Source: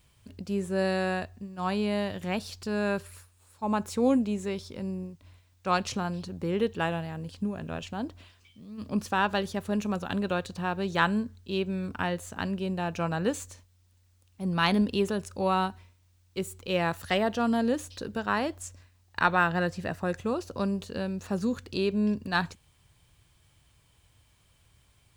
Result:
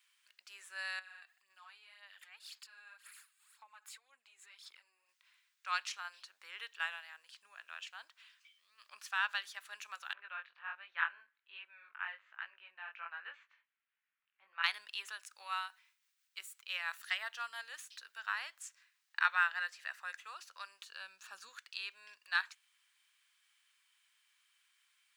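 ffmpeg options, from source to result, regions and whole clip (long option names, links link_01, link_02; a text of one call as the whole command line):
ffmpeg -i in.wav -filter_complex "[0:a]asettb=1/sr,asplit=3[link_01][link_02][link_03];[link_01]atrim=end=0.994[link_04];[link_02]atrim=start=0.99:end=5.09,asetpts=PTS-STARTPTS,afade=type=in:duration=0.004:curve=qsin,afade=type=out:start_time=4.096:duration=0.004:curve=qsin,bandreject=frequency=5800:width=6.1,acompressor=threshold=-40dB:ratio=16:attack=3.2:release=140:knee=1:detection=peak,aphaser=in_gain=1:out_gain=1:delay=2.6:decay=0.52:speed=1.9:type=sinusoidal[link_05];[link_03]atrim=start=5.086[link_06];[link_04][link_05]acrossfade=duration=0.004:curve1=hsin:curve2=qsin[link_07];[link_07][link_06]acrossfade=duration=0.004:curve1=qsin:curve2=hsin,asettb=1/sr,asplit=3[link_08][link_09][link_10];[link_08]atrim=end=10.134[link_11];[link_09]atrim=start=10.13:end=14.64,asetpts=PTS-STARTPTS,afade=type=in:duration=0.004:curve=qsin,afade=type=out:start_time=4.506:duration=0.004:curve=qsin,lowpass=frequency=2600:width=0.5412,lowpass=frequency=2600:width=1.3066,flanger=delay=16.5:depth=5.1:speed=1.3[link_12];[link_10]atrim=start=14.636[link_13];[link_11][link_12]acrossfade=duration=0.004:curve1=hsin:curve2=qsin[link_14];[link_14][link_13]acrossfade=duration=0.004:curve1=qsin:curve2=hsin,asettb=1/sr,asplit=3[link_15][link_16][link_17];[link_15]atrim=end=15.224[link_18];[link_16]atrim=start=15.22:end=18.42,asetpts=PTS-STARTPTS,afade=type=in:duration=0.004:curve=qsin,afade=type=out:start_time=3.196:duration=0.004:curve=qsin,highshelf=frequency=9900:gain=4.5,tremolo=f=5.9:d=0.33[link_19];[link_17]atrim=start=18.416[link_20];[link_18][link_19]acrossfade=duration=0.004:curve1=hsin:curve2=qsin[link_21];[link_21][link_20]acrossfade=duration=0.004:curve1=qsin:curve2=hsin,asettb=1/sr,asplit=3[link_22][link_23][link_24];[link_22]atrim=end=20.844[link_25];[link_23]atrim=start=20.84:end=21.49,asetpts=PTS-STARTPTS,afade=type=in:duration=0.004:curve=qsin,afade=type=out:start_time=0.646:duration=0.004:curve=qsin,equalizer=frequency=180:width=1.1:gain=14.5,bandreject=frequency=2000:width=5.3[link_26];[link_24]atrim=start=21.486[link_27];[link_25][link_26]acrossfade=duration=0.004:curve1=hsin:curve2=qsin[link_28];[link_28][link_27]acrossfade=duration=0.004:curve1=qsin:curve2=hsin,highpass=frequency=1500:width=0.5412,highpass=frequency=1500:width=1.3066,highshelf=frequency=2500:gain=-10.5,volume=2dB" out.wav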